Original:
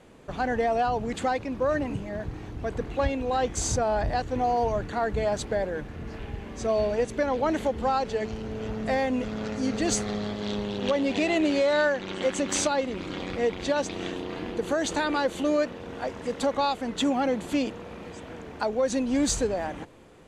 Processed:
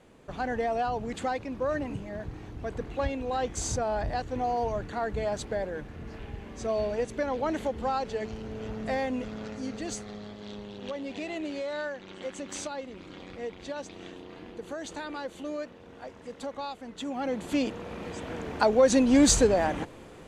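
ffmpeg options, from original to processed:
-af "volume=12dB,afade=t=out:st=9.05:d=0.94:silence=0.446684,afade=t=in:st=17.06:d=0.38:silence=0.375837,afade=t=in:st=17.44:d=1.08:silence=0.421697"

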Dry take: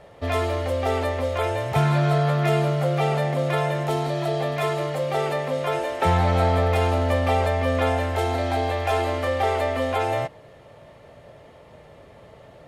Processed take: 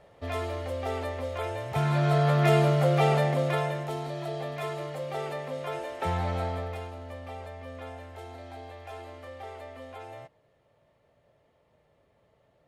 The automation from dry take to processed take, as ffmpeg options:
-af "volume=-0.5dB,afade=t=in:st=1.7:d=0.77:silence=0.398107,afade=t=out:st=3.12:d=0.77:silence=0.354813,afade=t=out:st=6.29:d=0.62:silence=0.316228"

